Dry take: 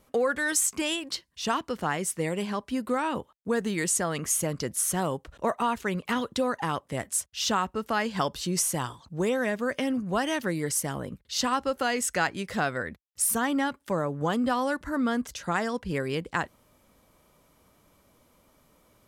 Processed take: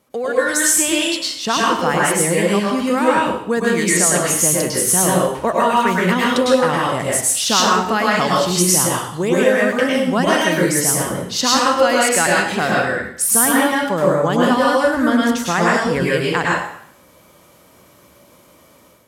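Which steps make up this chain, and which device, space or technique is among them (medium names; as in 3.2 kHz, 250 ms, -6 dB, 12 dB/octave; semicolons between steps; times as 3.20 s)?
far laptop microphone (reverberation RT60 0.60 s, pre-delay 97 ms, DRR -4.5 dB; high-pass 110 Hz 12 dB/octave; level rider gain up to 7.5 dB); trim +1 dB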